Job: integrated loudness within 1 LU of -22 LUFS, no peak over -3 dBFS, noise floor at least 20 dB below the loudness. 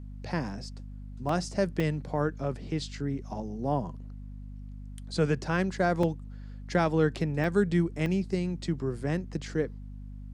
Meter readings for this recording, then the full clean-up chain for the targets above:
dropouts 5; longest dropout 3.4 ms; hum 50 Hz; harmonics up to 250 Hz; hum level -39 dBFS; loudness -30.0 LUFS; peak -13.0 dBFS; loudness target -22.0 LUFS
-> interpolate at 1.29/1.8/6.03/7.44/8.06, 3.4 ms; de-hum 50 Hz, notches 5; gain +8 dB

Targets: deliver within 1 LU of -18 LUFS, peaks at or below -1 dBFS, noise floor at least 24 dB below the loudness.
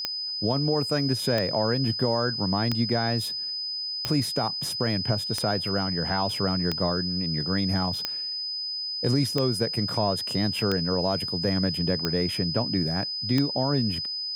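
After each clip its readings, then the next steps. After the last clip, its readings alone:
clicks 11; steady tone 5000 Hz; tone level -29 dBFS; loudness -25.5 LUFS; peak -9.5 dBFS; loudness target -18.0 LUFS
-> de-click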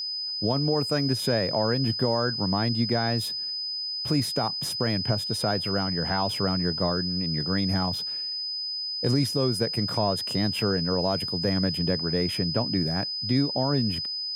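clicks 0; steady tone 5000 Hz; tone level -29 dBFS
-> notch 5000 Hz, Q 30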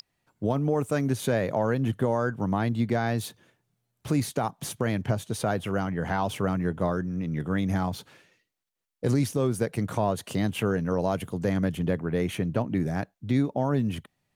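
steady tone none; loudness -28.0 LUFS; peak -14.5 dBFS; loudness target -18.0 LUFS
-> gain +10 dB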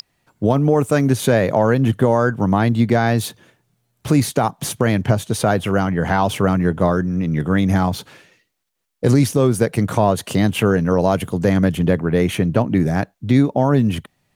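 loudness -18.0 LUFS; peak -4.5 dBFS; noise floor -69 dBFS

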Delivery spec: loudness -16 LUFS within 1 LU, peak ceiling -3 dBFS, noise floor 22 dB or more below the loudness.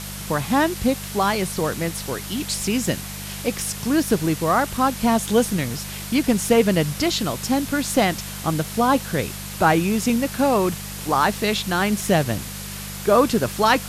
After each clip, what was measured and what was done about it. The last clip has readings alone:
hum 50 Hz; harmonics up to 200 Hz; hum level -34 dBFS; noise floor -33 dBFS; noise floor target -44 dBFS; loudness -21.5 LUFS; peak -4.0 dBFS; loudness target -16.0 LUFS
-> de-hum 50 Hz, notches 4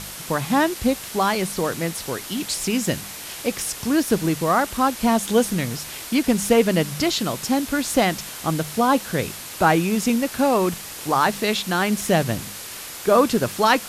hum none; noise floor -36 dBFS; noise floor target -44 dBFS
-> denoiser 8 dB, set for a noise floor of -36 dBFS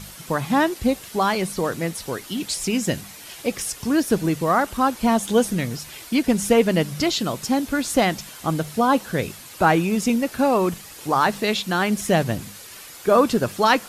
noise floor -41 dBFS; noise floor target -44 dBFS
-> denoiser 6 dB, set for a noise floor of -41 dBFS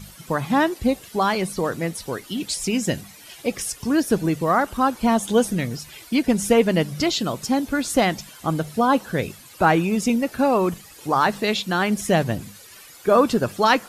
noise floor -45 dBFS; loudness -22.0 LUFS; peak -4.5 dBFS; loudness target -16.0 LUFS
-> gain +6 dB; limiter -3 dBFS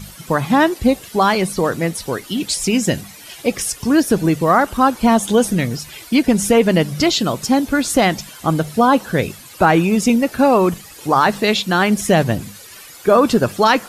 loudness -16.5 LUFS; peak -3.0 dBFS; noise floor -39 dBFS

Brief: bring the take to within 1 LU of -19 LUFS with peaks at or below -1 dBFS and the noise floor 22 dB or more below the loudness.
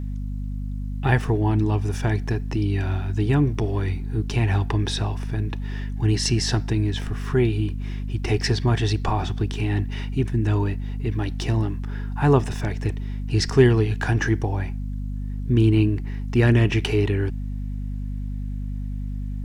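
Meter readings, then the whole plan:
hum 50 Hz; harmonics up to 250 Hz; hum level -26 dBFS; loudness -23.5 LUFS; peak -3.5 dBFS; loudness target -19.0 LUFS
-> notches 50/100/150/200/250 Hz; gain +4.5 dB; limiter -1 dBFS

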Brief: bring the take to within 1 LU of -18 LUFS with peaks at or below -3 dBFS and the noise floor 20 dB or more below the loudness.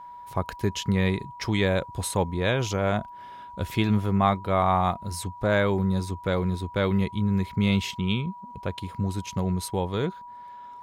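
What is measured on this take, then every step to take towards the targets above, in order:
steady tone 970 Hz; tone level -40 dBFS; loudness -26.5 LUFS; peak -8.5 dBFS; loudness target -18.0 LUFS
-> notch 970 Hz, Q 30; gain +8.5 dB; limiter -3 dBFS

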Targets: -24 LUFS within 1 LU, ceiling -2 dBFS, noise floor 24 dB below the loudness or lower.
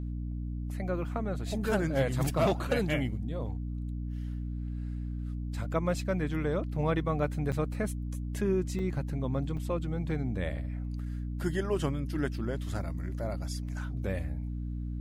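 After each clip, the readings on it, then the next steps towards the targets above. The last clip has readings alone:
dropouts 3; longest dropout 4.7 ms; hum 60 Hz; harmonics up to 300 Hz; hum level -33 dBFS; loudness -33.0 LUFS; peak -15.5 dBFS; loudness target -24.0 LUFS
-> interpolate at 7.52/8.79/9.57, 4.7 ms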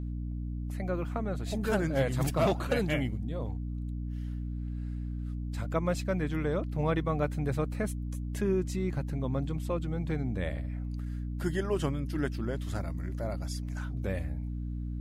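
dropouts 0; hum 60 Hz; harmonics up to 300 Hz; hum level -33 dBFS
-> de-hum 60 Hz, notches 5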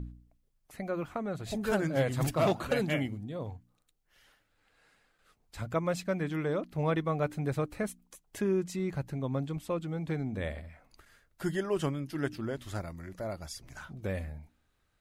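hum none; loudness -33.5 LUFS; peak -17.0 dBFS; loudness target -24.0 LUFS
-> gain +9.5 dB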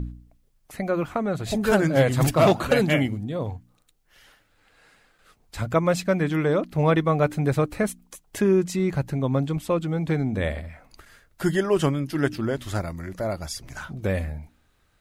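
loudness -24.0 LUFS; peak -7.5 dBFS; noise floor -64 dBFS

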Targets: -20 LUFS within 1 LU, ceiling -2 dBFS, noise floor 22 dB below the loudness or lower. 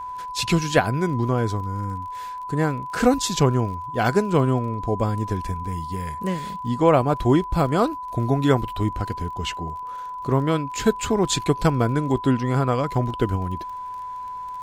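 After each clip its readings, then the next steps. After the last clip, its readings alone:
ticks 30/s; steady tone 1000 Hz; tone level -30 dBFS; loudness -23.0 LUFS; peak -4.0 dBFS; loudness target -20.0 LUFS
-> de-click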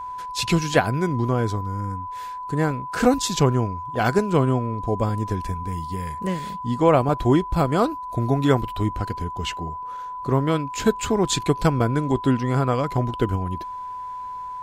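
ticks 0.14/s; steady tone 1000 Hz; tone level -30 dBFS
-> notch 1000 Hz, Q 30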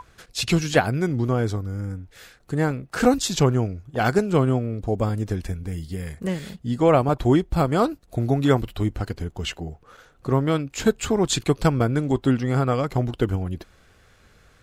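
steady tone none; loudness -23.5 LUFS; peak -4.0 dBFS; loudness target -20.0 LUFS
-> gain +3.5 dB; limiter -2 dBFS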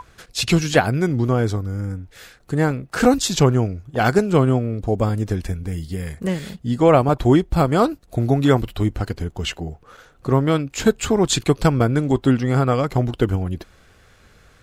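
loudness -20.0 LUFS; peak -2.0 dBFS; noise floor -53 dBFS

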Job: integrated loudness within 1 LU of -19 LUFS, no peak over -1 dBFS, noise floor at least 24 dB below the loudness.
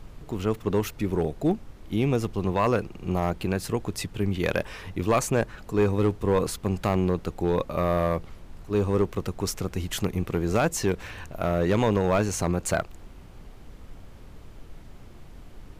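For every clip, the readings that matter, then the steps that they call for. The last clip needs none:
clipped 0.7%; flat tops at -15.0 dBFS; noise floor -46 dBFS; noise floor target -51 dBFS; loudness -26.5 LUFS; peak -15.0 dBFS; loudness target -19.0 LUFS
-> clip repair -15 dBFS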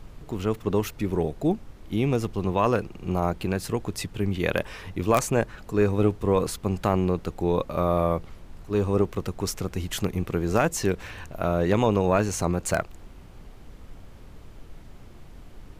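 clipped 0.0%; noise floor -46 dBFS; noise floor target -50 dBFS
-> noise print and reduce 6 dB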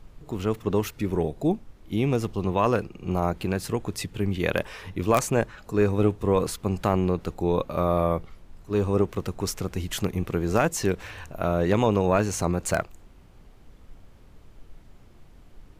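noise floor -51 dBFS; loudness -26.0 LUFS; peak -6.0 dBFS; loudness target -19.0 LUFS
-> gain +7 dB; limiter -1 dBFS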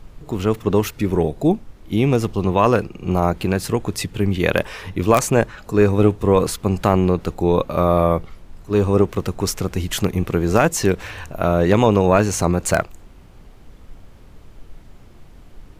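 loudness -19.0 LUFS; peak -1.0 dBFS; noise floor -44 dBFS

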